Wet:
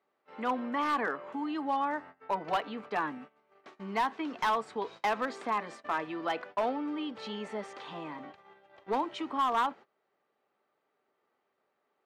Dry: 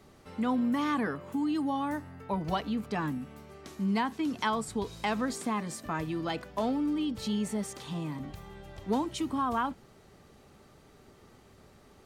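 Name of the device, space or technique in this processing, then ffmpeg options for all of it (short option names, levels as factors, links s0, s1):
walkie-talkie: -af "highpass=520,lowpass=2400,asoftclip=type=hard:threshold=0.0422,agate=range=0.1:threshold=0.00282:ratio=16:detection=peak,volume=1.68"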